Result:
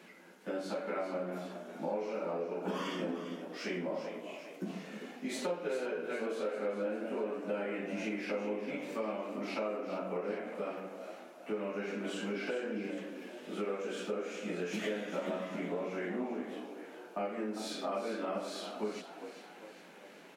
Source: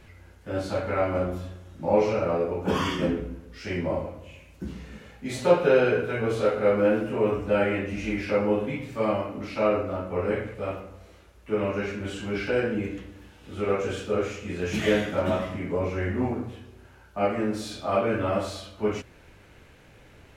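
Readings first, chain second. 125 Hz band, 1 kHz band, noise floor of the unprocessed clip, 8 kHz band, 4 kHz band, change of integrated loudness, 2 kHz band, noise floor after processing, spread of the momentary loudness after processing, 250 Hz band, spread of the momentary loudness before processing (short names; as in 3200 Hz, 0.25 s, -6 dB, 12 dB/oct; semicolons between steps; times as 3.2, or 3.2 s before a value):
-17.0 dB, -10.5 dB, -53 dBFS, n/a, -7.5 dB, -11.5 dB, -10.0 dB, -54 dBFS, 9 LU, -9.5 dB, 16 LU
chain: elliptic high-pass 180 Hz, stop band 40 dB; compressor 5:1, threshold -35 dBFS, peak gain reduction 19 dB; on a send: frequency-shifting echo 0.401 s, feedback 52%, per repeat +56 Hz, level -10.5 dB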